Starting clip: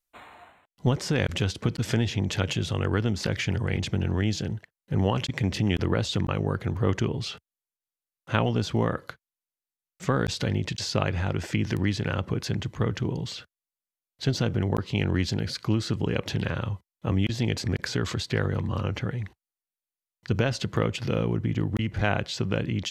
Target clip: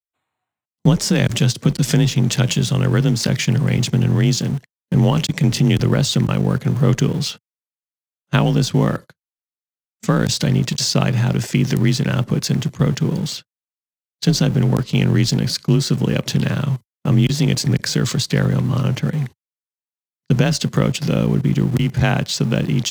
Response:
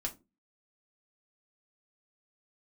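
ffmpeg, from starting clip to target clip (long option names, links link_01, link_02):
-filter_complex "[0:a]afreqshift=30,bass=frequency=250:gain=7,treble=frequency=4000:gain=11,agate=range=-32dB:threshold=-33dB:ratio=16:detection=peak,asplit=2[link_01][link_02];[link_02]aeval=exprs='val(0)*gte(abs(val(0)),0.0447)':channel_layout=same,volume=-7dB[link_03];[link_01][link_03]amix=inputs=2:normalize=0,volume=1.5dB"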